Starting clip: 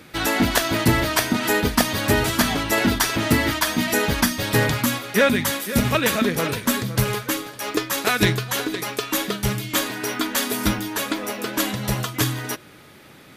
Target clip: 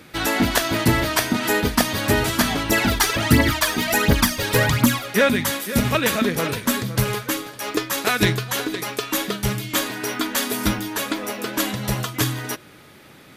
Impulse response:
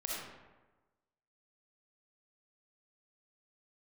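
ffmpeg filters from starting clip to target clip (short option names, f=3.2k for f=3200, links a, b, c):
-filter_complex "[0:a]asettb=1/sr,asplit=3[a][b][c];[a]atrim=end=2.694[d];[b]atrim=start=2.69:end=5.08,asetpts=PTS-STARTPTS,afade=t=in:d=0.004:c=qsin,afade=t=out:st=2.386:d=0.004:c=qsin,aphaser=in_gain=1:out_gain=1:delay=2.6:decay=0.59:speed=1.4:type=triangular[e];[c]atrim=start=5.076[f];[d][e]acrossfade=d=0.004:c1=hsin:c2=qsin[g];[g][f]acrossfade=d=0.004:c1=qsin:c2=hsin"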